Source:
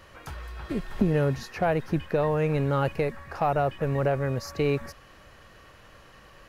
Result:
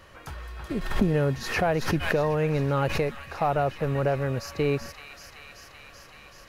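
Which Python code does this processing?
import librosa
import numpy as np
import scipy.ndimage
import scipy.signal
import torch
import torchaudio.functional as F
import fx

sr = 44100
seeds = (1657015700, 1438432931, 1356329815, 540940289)

y = fx.echo_wet_highpass(x, sr, ms=382, feedback_pct=78, hz=2400.0, wet_db=-6.0)
y = fx.pre_swell(y, sr, db_per_s=67.0, at=(0.81, 3.16))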